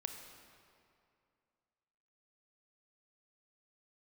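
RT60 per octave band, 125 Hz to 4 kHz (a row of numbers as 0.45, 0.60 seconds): 2.5, 2.5, 2.5, 2.4, 2.1, 1.7 seconds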